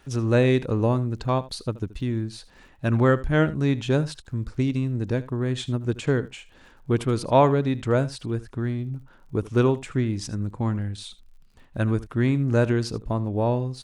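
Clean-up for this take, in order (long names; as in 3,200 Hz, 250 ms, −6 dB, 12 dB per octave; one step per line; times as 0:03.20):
click removal
echo removal 78 ms −18 dB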